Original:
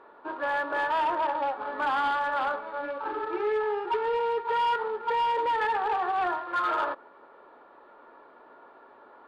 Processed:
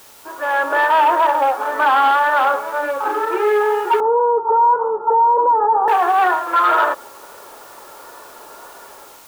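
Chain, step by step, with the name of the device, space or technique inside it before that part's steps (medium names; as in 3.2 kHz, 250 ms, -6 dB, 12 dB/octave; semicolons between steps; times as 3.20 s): dictaphone (band-pass 360–3800 Hz; level rider gain up to 13 dB; wow and flutter; white noise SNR 28 dB); 4.00–5.88 s: steep low-pass 1.2 kHz 48 dB/octave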